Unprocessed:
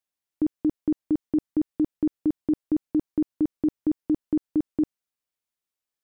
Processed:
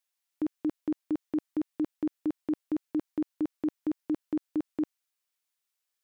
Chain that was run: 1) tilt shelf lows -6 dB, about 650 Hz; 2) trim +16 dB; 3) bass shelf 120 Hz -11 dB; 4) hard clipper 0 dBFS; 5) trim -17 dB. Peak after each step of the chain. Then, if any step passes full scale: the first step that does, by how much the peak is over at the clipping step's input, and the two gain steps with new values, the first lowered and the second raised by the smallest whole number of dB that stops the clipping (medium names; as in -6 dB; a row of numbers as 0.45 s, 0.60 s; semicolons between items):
-20.5 dBFS, -4.5 dBFS, -6.0 dBFS, -6.0 dBFS, -23.0 dBFS; nothing clips